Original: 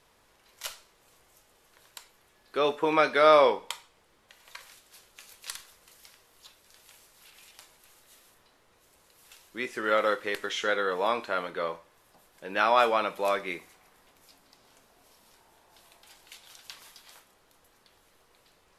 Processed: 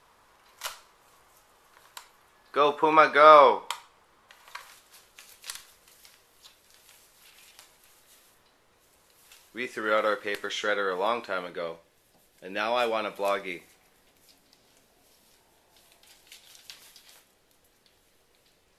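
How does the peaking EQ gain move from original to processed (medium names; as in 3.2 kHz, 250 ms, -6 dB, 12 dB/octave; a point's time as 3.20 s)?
peaking EQ 1.1 kHz 1.1 oct
4.56 s +8 dB
5.33 s 0 dB
11.17 s 0 dB
11.73 s -9 dB
12.81 s -9 dB
13.32 s 0 dB
13.54 s -6.5 dB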